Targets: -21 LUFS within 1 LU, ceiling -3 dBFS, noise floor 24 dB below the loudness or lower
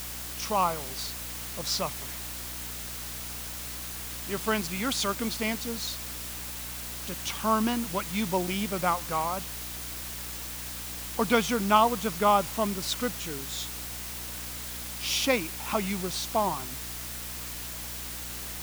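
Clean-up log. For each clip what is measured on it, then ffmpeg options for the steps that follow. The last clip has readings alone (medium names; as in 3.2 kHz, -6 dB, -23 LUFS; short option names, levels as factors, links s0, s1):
hum 60 Hz; highest harmonic 300 Hz; hum level -42 dBFS; noise floor -38 dBFS; noise floor target -54 dBFS; loudness -30.0 LUFS; peak level -7.0 dBFS; loudness target -21.0 LUFS
-> -af "bandreject=f=60:t=h:w=6,bandreject=f=120:t=h:w=6,bandreject=f=180:t=h:w=6,bandreject=f=240:t=h:w=6,bandreject=f=300:t=h:w=6"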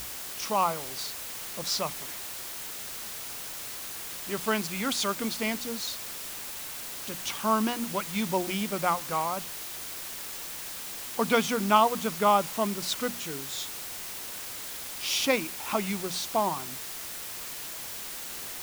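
hum not found; noise floor -39 dBFS; noise floor target -54 dBFS
-> -af "afftdn=nr=15:nf=-39"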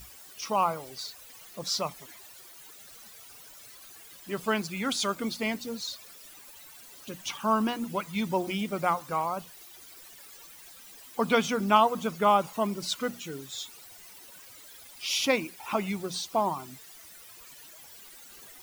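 noise floor -50 dBFS; noise floor target -54 dBFS
-> -af "afftdn=nr=6:nf=-50"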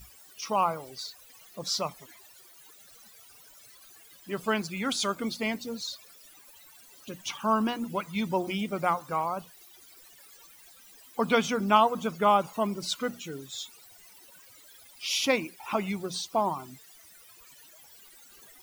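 noise floor -54 dBFS; loudness -29.5 LUFS; peak level -7.5 dBFS; loudness target -21.0 LUFS
-> -af "volume=2.66,alimiter=limit=0.708:level=0:latency=1"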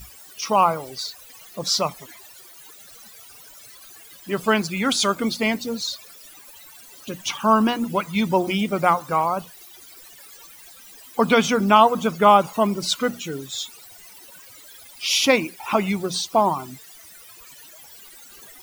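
loudness -21.0 LUFS; peak level -3.0 dBFS; noise floor -46 dBFS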